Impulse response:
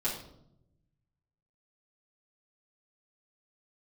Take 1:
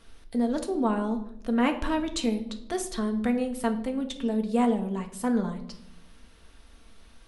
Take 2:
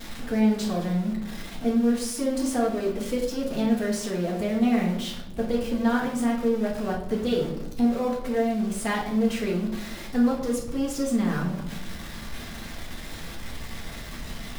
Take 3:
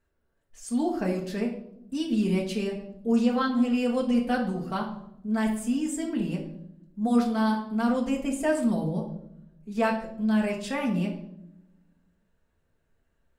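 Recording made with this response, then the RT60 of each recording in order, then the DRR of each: 2; 0.80 s, 0.75 s, 0.80 s; 4.5 dB, -9.5 dB, -1.0 dB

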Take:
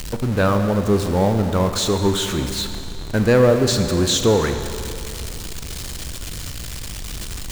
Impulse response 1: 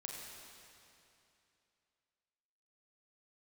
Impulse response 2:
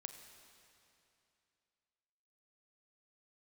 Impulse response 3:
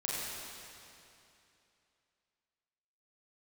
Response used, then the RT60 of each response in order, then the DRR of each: 2; 2.8 s, 2.7 s, 2.8 s; -1.5 dB, 6.5 dB, -7.0 dB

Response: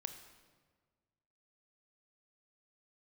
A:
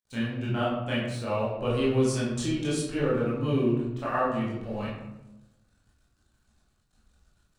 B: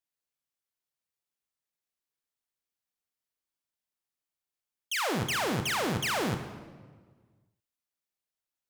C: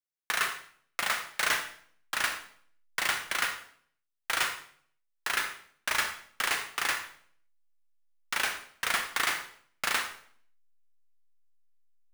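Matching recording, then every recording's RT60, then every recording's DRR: B; 0.95 s, 1.6 s, 0.55 s; -8.0 dB, 8.0 dB, 6.0 dB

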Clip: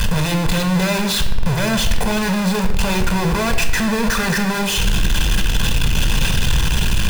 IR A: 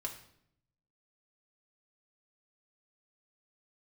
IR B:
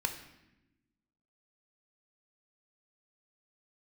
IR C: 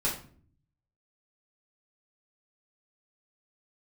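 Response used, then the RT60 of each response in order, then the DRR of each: B; 0.70 s, 0.95 s, 0.50 s; -0.5 dB, 6.0 dB, -7.0 dB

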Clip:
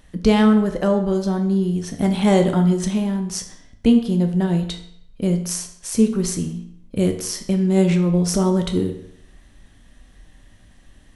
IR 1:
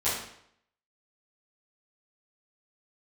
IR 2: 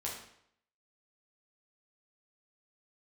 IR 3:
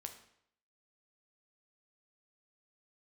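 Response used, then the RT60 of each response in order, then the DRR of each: 3; 0.70 s, 0.70 s, 0.70 s; -13.5 dB, -4.5 dB, 5.0 dB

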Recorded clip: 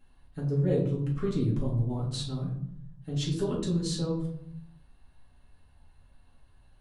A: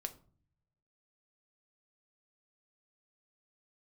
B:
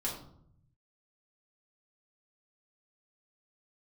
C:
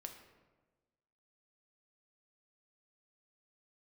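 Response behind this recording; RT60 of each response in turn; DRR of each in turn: B; 0.45 s, 0.65 s, 1.3 s; 7.0 dB, -5.5 dB, 4.0 dB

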